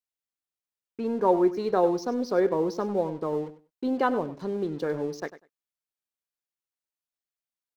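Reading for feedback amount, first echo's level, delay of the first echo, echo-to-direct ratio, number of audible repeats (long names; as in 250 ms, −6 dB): 16%, −14.5 dB, 98 ms, −14.5 dB, 2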